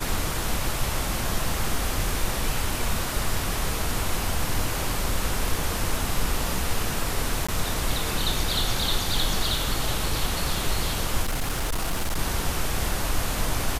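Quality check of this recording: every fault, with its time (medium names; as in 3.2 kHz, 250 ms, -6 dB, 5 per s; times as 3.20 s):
7.47–7.49 s: dropout 15 ms
11.22–12.19 s: clipped -21.5 dBFS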